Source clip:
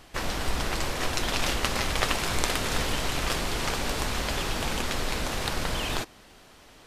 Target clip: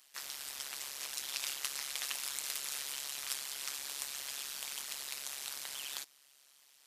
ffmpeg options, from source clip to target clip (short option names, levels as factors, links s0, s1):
-af "aderivative,tremolo=f=140:d=0.974"